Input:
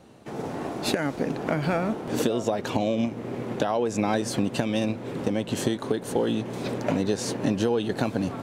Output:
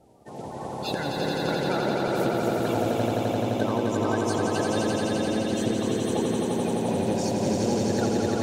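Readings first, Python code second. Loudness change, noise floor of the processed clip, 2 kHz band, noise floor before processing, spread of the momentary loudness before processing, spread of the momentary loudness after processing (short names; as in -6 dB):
+1.5 dB, -37 dBFS, +1.0 dB, -38 dBFS, 5 LU, 4 LU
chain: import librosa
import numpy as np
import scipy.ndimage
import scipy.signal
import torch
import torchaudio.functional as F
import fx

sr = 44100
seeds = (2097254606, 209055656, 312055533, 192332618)

y = fx.spec_quant(x, sr, step_db=30)
y = fx.echo_swell(y, sr, ms=86, loudest=5, wet_db=-4.0)
y = y * librosa.db_to_amplitude(-4.5)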